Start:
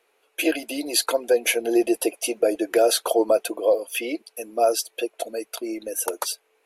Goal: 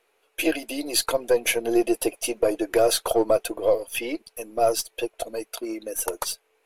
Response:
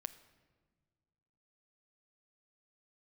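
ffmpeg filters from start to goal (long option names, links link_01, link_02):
-filter_complex "[0:a]aeval=exprs='if(lt(val(0),0),0.708*val(0),val(0))':channel_layout=same,asettb=1/sr,asplit=3[link_01][link_02][link_03];[link_01]atrim=end=5.464[link_04];[link_02]atrim=start=5.46:end=5.96,asetpts=PTS-STARTPTS,afade=type=in:duration=0.004:curve=qsin,afade=type=out:start_time=0.496:duration=0.004:curve=qsin,aeval=exprs='0.126*(cos(1*acos(clip(val(0)/0.126,-1,1)))-cos(1*PI/2))+0.00398*(cos(8*acos(clip(val(0)/0.126,-1,1)))-cos(8*PI/2))':channel_layout=same[link_05];[link_03]atrim=start=5.956[link_06];[link_04][link_05]acrossfade=duration=0.004:curve1=hsin:curve2=qsin[link_07];[link_07][link_06]acrossfade=duration=0.004:curve1=qsin:curve2=hsin"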